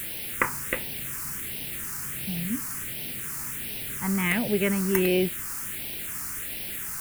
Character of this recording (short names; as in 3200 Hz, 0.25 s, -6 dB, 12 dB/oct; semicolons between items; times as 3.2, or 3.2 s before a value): a quantiser's noise floor 6-bit, dither triangular; phasing stages 4, 1.4 Hz, lowest notch 570–1200 Hz